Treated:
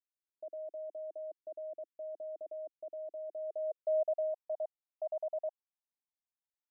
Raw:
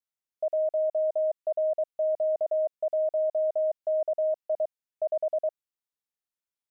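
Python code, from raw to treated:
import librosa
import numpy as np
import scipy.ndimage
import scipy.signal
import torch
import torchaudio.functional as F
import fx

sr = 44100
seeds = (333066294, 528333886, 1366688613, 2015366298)

y = fx.filter_sweep_bandpass(x, sr, from_hz=320.0, to_hz=820.0, start_s=3.23, end_s=4.31, q=3.0)
y = y * 10.0 ** (-3.5 / 20.0)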